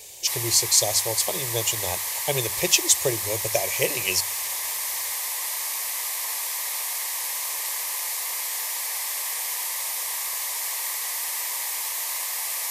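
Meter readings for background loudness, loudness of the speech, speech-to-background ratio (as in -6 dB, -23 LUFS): -26.0 LUFS, -23.0 LUFS, 3.0 dB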